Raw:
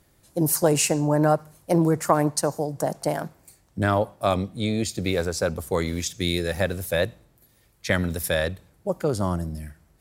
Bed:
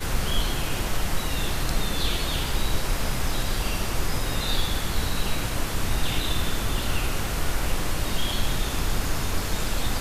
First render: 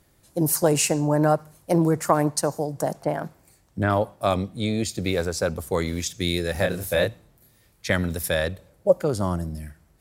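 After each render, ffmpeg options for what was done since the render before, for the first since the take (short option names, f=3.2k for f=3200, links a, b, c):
-filter_complex "[0:a]asettb=1/sr,asplit=3[a][b][c];[a]atrim=end=2.944[d];[b]atrim=start=2.94:end=3.9,asetpts=PTS-STARTPTS,afade=t=in:d=0.004:c=qsin,afade=t=out:st=0.956:d=0.004:c=qsin,acrossover=split=2800[e][f];[f]acompressor=threshold=-50dB:ratio=4:attack=1:release=60[g];[e][g]amix=inputs=2:normalize=0[h];[c]atrim=start=3.896[i];[d][h]acrossfade=d=0.004:c1=hsin:c2=qsin[j];[j][i]acrossfade=d=0.004:c1=qsin:c2=hsin,asettb=1/sr,asplit=3[k][l][m];[k]atrim=end=6.524[n];[l]atrim=start=6.52:end=7.88,asetpts=PTS-STARTPTS,afade=t=in:d=0.004:c=qsin,afade=t=out:st=1.356:d=0.004:c=qsin,asplit=2[o][p];[p]adelay=28,volume=-4dB[q];[o][q]amix=inputs=2:normalize=0,atrim=end_sample=59976[r];[m]atrim=start=7.876[s];[n][r]acrossfade=d=0.004:c1=hsin:c2=qsin[t];[t][s]acrossfade=d=0.004:c1=qsin:c2=hsin,asettb=1/sr,asplit=3[u][v][w];[u]atrim=end=8.524[x];[v]atrim=start=8.52:end=9.04,asetpts=PTS-STARTPTS,afade=t=in:d=0.004:c=qsin,afade=t=out:st=0.516:d=0.004:c=qsin,equalizer=f=550:t=o:w=0.39:g=11.5[y];[w]atrim=start=9.036[z];[x][y]acrossfade=d=0.004:c1=hsin:c2=qsin[aa];[aa][z]acrossfade=d=0.004:c1=qsin:c2=hsin"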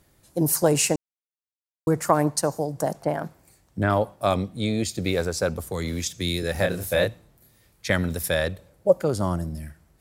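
-filter_complex "[0:a]asettb=1/sr,asplit=3[a][b][c];[a]atrim=end=5.644[d];[b]atrim=start=5.64:end=6.43,asetpts=PTS-STARTPTS,afade=t=in:d=0.004:c=qsin,afade=t=out:st=0.786:d=0.004:c=qsin,acrossover=split=190|3000[e][f][g];[f]acompressor=threshold=-27dB:ratio=6:attack=3.2:release=140:knee=2.83:detection=peak[h];[e][h][g]amix=inputs=3:normalize=0[i];[c]atrim=start=6.426[j];[d][i]acrossfade=d=0.004:c1=hsin:c2=qsin[k];[k][j]acrossfade=d=0.004:c1=qsin:c2=hsin,asplit=3[l][m][n];[l]atrim=end=0.96,asetpts=PTS-STARTPTS,afade=t=out:st=0.956:d=0.004:c=hsin[o];[m]atrim=start=0.96:end=1.87,asetpts=PTS-STARTPTS,volume=0[p];[n]atrim=start=1.87,asetpts=PTS-STARTPTS,afade=t=in:d=0.004:c=hsin[q];[o][p][q]concat=n=3:v=0:a=1"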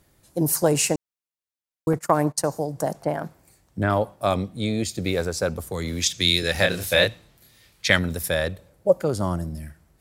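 -filter_complex "[0:a]asettb=1/sr,asplit=3[a][b][c];[a]atrim=end=1.934[d];[b]atrim=start=1.93:end=2.51,asetpts=PTS-STARTPTS,afade=t=in:d=0.004:c=qsin,afade=t=out:st=0.576:d=0.004:c=qsin,agate=range=-19dB:threshold=-31dB:ratio=16:release=100:detection=peak[e];[c]atrim=start=2.506[f];[d][e]acrossfade=d=0.004:c1=hsin:c2=qsin[g];[g][f]acrossfade=d=0.004:c1=qsin:c2=hsin,asettb=1/sr,asplit=3[h][i][j];[h]atrim=end=6.014[k];[i]atrim=start=6.01:end=7.99,asetpts=PTS-STARTPTS,afade=t=in:d=0.004:c=qsin,afade=t=out:st=1.976:d=0.004:c=qsin,equalizer=f=3.4k:t=o:w=2.3:g=10.5[l];[j]atrim=start=7.986[m];[k][l]acrossfade=d=0.004:c1=hsin:c2=qsin[n];[n][m]acrossfade=d=0.004:c1=qsin:c2=hsin"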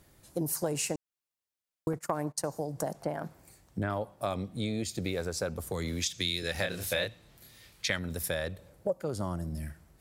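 -af "acompressor=threshold=-32dB:ratio=3"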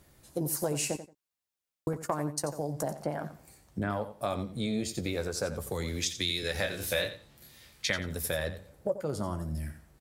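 -filter_complex "[0:a]asplit=2[a][b];[b]adelay=14,volume=-10dB[c];[a][c]amix=inputs=2:normalize=0,asplit=2[d][e];[e]aecho=0:1:88|176:0.251|0.0477[f];[d][f]amix=inputs=2:normalize=0"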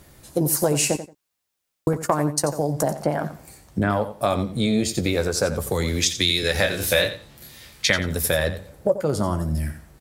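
-af "volume=10.5dB"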